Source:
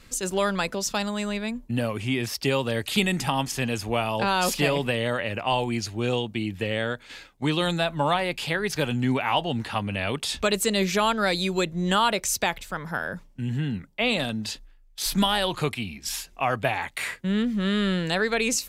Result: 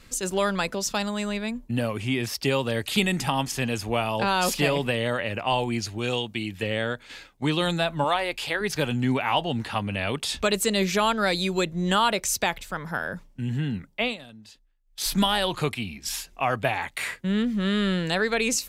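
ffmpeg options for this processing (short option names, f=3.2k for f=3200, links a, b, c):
-filter_complex "[0:a]asettb=1/sr,asplit=3[a][b][c];[a]atrim=end=5.984[d];[b]atrim=start=5.98:end=6.63,asetpts=PTS-STARTPTS,afade=t=in:d=0.004:c=qsin,afade=t=out:st=0.646:d=0.004:c=qsin,tiltshelf=f=1.1k:g=-3.5[e];[c]atrim=start=6.626[f];[d][e]acrossfade=d=0.004:c1=hsin:c2=qsin[g];[g][f]acrossfade=d=0.004:c1=qsin:c2=hsin,asettb=1/sr,asplit=3[h][i][j];[h]atrim=end=8.044[k];[i]atrim=start=8.04:end=8.61,asetpts=PTS-STARTPTS,afade=t=in:d=0.004:c=qsin,afade=t=out:st=0.566:d=0.004:c=qsin,equalizer=f=170:t=o:w=1:g=-12.5[l];[j]atrim=start=8.606[m];[k][l]acrossfade=d=0.004:c1=hsin:c2=qsin[n];[n][m]acrossfade=d=0.004:c1=qsin:c2=hsin,asplit=3[o][p][q];[o]atrim=end=14.17,asetpts=PTS-STARTPTS,afade=t=out:st=14.01:d=0.16:silence=0.141254[r];[p]atrim=start=14.17:end=14.84,asetpts=PTS-STARTPTS,volume=-17dB[s];[q]atrim=start=14.84,asetpts=PTS-STARTPTS,afade=t=in:d=0.16:silence=0.141254[t];[r][s][t]concat=n=3:v=0:a=1"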